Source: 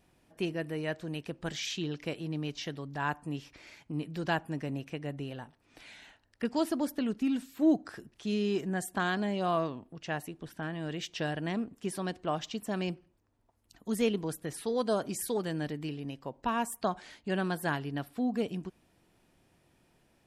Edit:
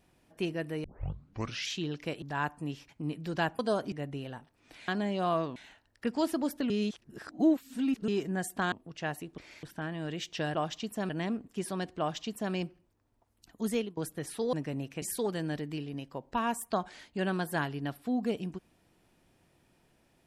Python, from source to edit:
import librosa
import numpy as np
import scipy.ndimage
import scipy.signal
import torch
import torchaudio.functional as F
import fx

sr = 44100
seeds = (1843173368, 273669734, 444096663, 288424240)

y = fx.edit(x, sr, fx.tape_start(start_s=0.84, length_s=0.86),
    fx.cut(start_s=2.22, length_s=0.65),
    fx.move(start_s=3.54, length_s=0.25, to_s=10.44),
    fx.swap(start_s=4.49, length_s=0.49, other_s=14.8, other_length_s=0.33),
    fx.reverse_span(start_s=7.08, length_s=1.38),
    fx.move(start_s=9.1, length_s=0.68, to_s=5.94),
    fx.duplicate(start_s=12.26, length_s=0.54, to_s=11.36),
    fx.fade_out_to(start_s=13.95, length_s=0.29, floor_db=-24.0), tone=tone)